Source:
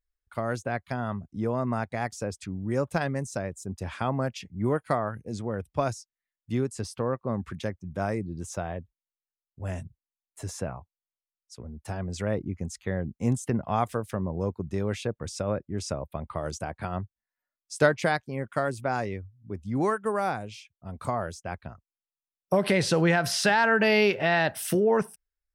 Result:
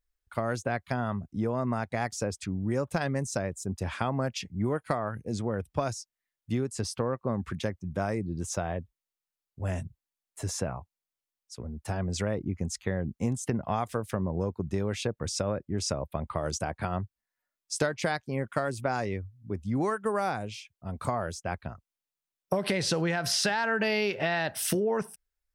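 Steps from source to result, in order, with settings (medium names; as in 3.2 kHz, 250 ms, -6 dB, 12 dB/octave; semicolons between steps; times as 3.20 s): dynamic bell 5.3 kHz, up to +4 dB, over -44 dBFS, Q 0.99; compression, threshold -27 dBFS, peak gain reduction 11.5 dB; trim +2.5 dB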